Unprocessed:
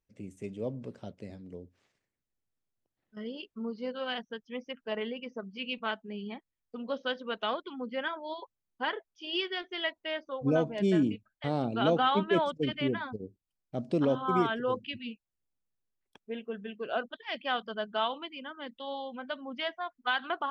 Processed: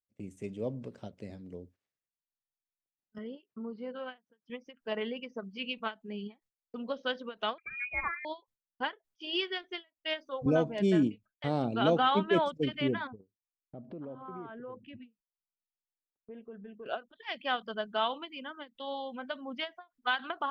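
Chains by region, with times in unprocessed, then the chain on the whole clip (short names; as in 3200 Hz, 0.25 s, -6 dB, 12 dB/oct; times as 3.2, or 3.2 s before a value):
3.18–4.5 compressor 2:1, threshold -38 dBFS + BPF 130–2400 Hz
7.58–8.25 inverted band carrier 2700 Hz + low shelf 130 Hz +12 dB
9.95–10.46 high shelf 2700 Hz +8.5 dB + de-hum 130.6 Hz, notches 3 + three-band expander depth 70%
13.07–16.86 LPF 1300 Hz + compressor 3:1, threshold -45 dBFS
whole clip: gate -57 dBFS, range -20 dB; ending taper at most 320 dB/s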